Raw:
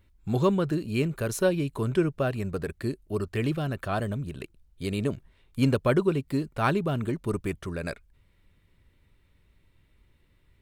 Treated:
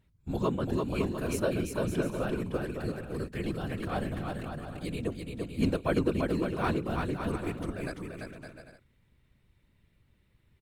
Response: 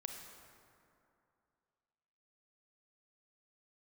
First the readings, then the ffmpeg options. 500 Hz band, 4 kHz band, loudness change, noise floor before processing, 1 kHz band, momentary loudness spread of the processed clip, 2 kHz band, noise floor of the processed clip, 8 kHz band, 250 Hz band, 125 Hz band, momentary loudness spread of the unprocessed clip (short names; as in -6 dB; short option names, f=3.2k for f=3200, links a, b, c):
-4.0 dB, -3.5 dB, -4.5 dB, -65 dBFS, -3.5 dB, 9 LU, -4.0 dB, -69 dBFS, -4.0 dB, -3.5 dB, -5.5 dB, 11 LU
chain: -af "afftfilt=real='hypot(re,im)*cos(2*PI*random(0))':imag='hypot(re,im)*sin(2*PI*random(1))':win_size=512:overlap=0.75,aecho=1:1:340|561|704.6|798|858.7:0.631|0.398|0.251|0.158|0.1"